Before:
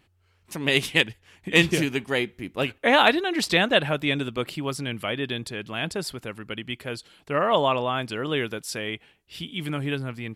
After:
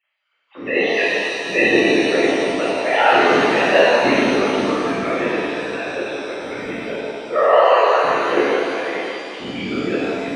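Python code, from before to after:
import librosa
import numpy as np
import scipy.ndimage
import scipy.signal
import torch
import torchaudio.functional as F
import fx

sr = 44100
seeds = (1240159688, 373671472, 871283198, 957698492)

y = fx.sine_speech(x, sr)
y = fx.whisperise(y, sr, seeds[0])
y = fx.rev_shimmer(y, sr, seeds[1], rt60_s=2.4, semitones=7, shimmer_db=-8, drr_db=-9.0)
y = y * librosa.db_to_amplitude(-2.5)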